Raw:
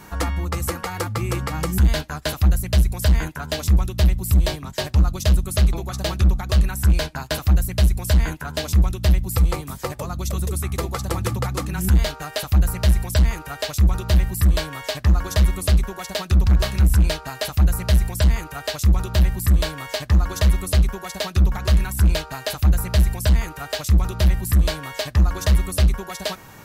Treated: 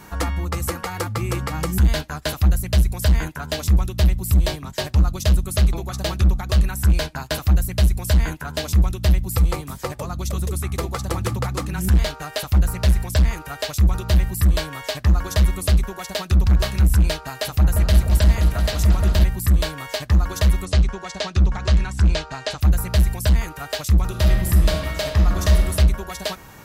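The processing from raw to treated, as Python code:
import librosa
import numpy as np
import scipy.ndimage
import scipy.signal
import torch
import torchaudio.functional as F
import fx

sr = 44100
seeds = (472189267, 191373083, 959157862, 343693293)

y = fx.doppler_dist(x, sr, depth_ms=0.17, at=(9.62, 13.37))
y = fx.echo_opening(y, sr, ms=175, hz=400, octaves=2, feedback_pct=70, wet_db=-3, at=(17.29, 19.24))
y = fx.lowpass(y, sr, hz=7400.0, slope=24, at=(20.65, 22.61))
y = fx.reverb_throw(y, sr, start_s=24.04, length_s=1.63, rt60_s=1.4, drr_db=3.0)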